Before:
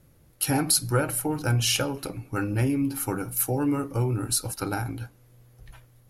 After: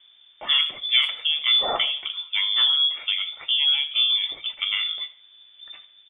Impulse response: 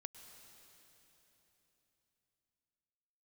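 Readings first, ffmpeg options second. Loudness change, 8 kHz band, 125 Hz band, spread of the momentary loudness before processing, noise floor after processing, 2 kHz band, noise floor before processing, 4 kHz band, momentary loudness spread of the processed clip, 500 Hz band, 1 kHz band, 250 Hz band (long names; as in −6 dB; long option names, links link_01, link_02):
+5.5 dB, below −35 dB, below −30 dB, 10 LU, −54 dBFS, +6.0 dB, −58 dBFS, +16.0 dB, 9 LU, −8.5 dB, −2.0 dB, below −25 dB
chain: -filter_complex "[0:a]lowpass=frequency=3100:width_type=q:width=0.5098,lowpass=frequency=3100:width_type=q:width=0.6013,lowpass=frequency=3100:width_type=q:width=0.9,lowpass=frequency=3100:width_type=q:width=2.563,afreqshift=-3600,asplit=2[link_01][link_02];[link_02]adelay=80,highpass=300,lowpass=3400,asoftclip=type=hard:threshold=-18.5dB,volume=-17dB[link_03];[link_01][link_03]amix=inputs=2:normalize=0[link_04];[1:a]atrim=start_sample=2205,atrim=end_sample=4410,asetrate=30870,aresample=44100[link_05];[link_04][link_05]afir=irnorm=-1:irlink=0,volume=8dB"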